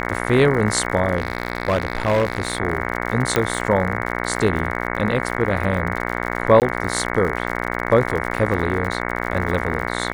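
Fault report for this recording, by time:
buzz 60 Hz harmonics 37 -25 dBFS
crackle 73/s -27 dBFS
1.17–2.6 clipped -13.5 dBFS
3.36 pop -3 dBFS
6.6–6.62 gap 18 ms

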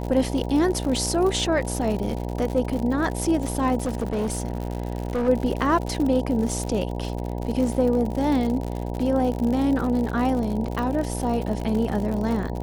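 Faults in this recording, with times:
buzz 60 Hz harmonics 16 -29 dBFS
crackle 91/s -28 dBFS
3.82–5.29 clipped -21 dBFS
10.79 pop -17 dBFS

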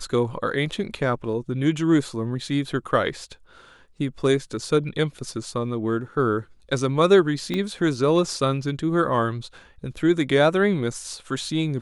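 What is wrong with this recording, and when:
7.54 pop -14 dBFS

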